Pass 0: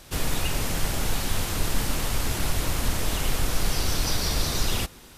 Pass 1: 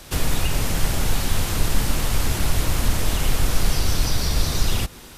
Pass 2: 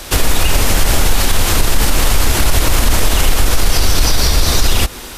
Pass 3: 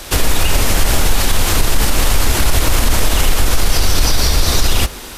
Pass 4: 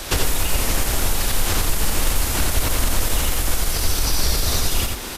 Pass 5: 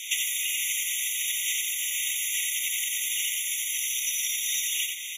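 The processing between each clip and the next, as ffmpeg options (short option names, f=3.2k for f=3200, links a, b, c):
-filter_complex "[0:a]acrossover=split=180[a][b];[b]acompressor=threshold=-31dB:ratio=6[c];[a][c]amix=inputs=2:normalize=0,volume=6dB"
-af "equalizer=f=140:t=o:w=1.2:g=-9,alimiter=level_in=14dB:limit=-1dB:release=50:level=0:latency=1,volume=-1dB"
-af "flanger=delay=9.1:depth=8:regen=-85:speed=1.8:shape=sinusoidal,volume=3.5dB"
-filter_complex "[0:a]acrossover=split=7300[a][b];[a]acompressor=threshold=-17dB:ratio=6[c];[b]alimiter=limit=-21dB:level=0:latency=1:release=39[d];[c][d]amix=inputs=2:normalize=0,aecho=1:1:89:0.631"
-af "afftfilt=real='re*eq(mod(floor(b*sr/1024/1900),2),1)':imag='im*eq(mod(floor(b*sr/1024/1900),2),1)':win_size=1024:overlap=0.75"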